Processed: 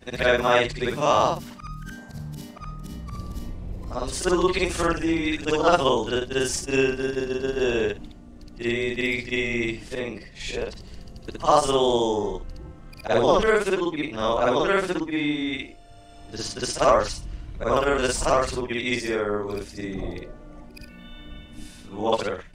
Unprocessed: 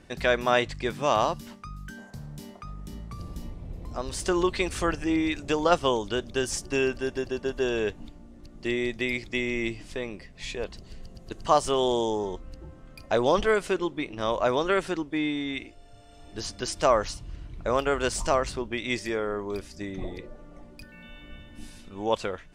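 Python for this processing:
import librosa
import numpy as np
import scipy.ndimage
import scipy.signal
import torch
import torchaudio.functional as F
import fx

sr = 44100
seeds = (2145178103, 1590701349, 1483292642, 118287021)

y = fx.frame_reverse(x, sr, frame_ms=135.0)
y = F.gain(torch.from_numpy(y), 7.0).numpy()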